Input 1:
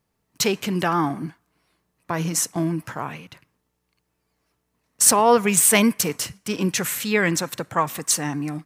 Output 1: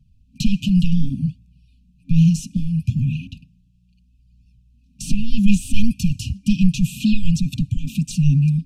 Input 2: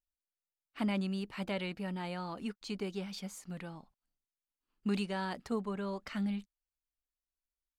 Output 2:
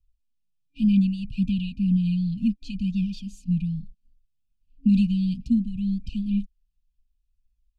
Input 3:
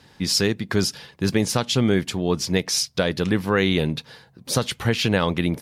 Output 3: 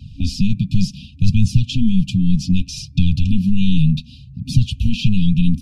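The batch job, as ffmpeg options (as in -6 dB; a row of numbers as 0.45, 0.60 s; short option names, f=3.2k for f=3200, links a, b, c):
-filter_complex "[0:a]apsyclip=17.5dB,afftfilt=real='re*(1-between(b*sr/4096,270,2400))':imag='im*(1-between(b*sr/4096,270,2400))':win_size=4096:overlap=0.75,acrossover=split=95|2600[a][b][c];[a]acompressor=threshold=-20dB:ratio=4[d];[b]acompressor=threshold=-17dB:ratio=4[e];[c]acompressor=threshold=-12dB:ratio=4[f];[d][e][f]amix=inputs=3:normalize=0,aemphasis=mode=reproduction:type=riaa,flanger=delay=1.1:depth=5.3:regen=1:speed=0.66:shape=sinusoidal,volume=-6.5dB"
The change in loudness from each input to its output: 0.0, +13.0, +3.5 LU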